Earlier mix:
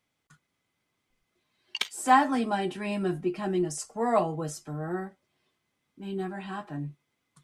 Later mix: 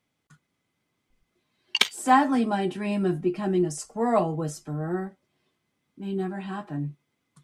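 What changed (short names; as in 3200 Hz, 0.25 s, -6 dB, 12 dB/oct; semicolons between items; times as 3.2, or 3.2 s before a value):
background +9.0 dB; master: add bell 200 Hz +5 dB 2.5 oct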